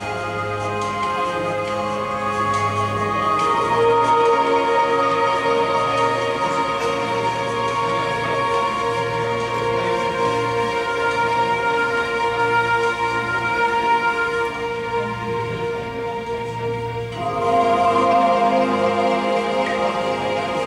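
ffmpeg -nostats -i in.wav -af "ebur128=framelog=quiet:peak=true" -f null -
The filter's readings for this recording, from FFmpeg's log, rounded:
Integrated loudness:
  I:         -19.7 LUFS
  Threshold: -29.7 LUFS
Loudness range:
  LRA:         4.1 LU
  Threshold: -39.6 LUFS
  LRA low:   -21.7 LUFS
  LRA high:  -17.6 LUFS
True peak:
  Peak:       -6.5 dBFS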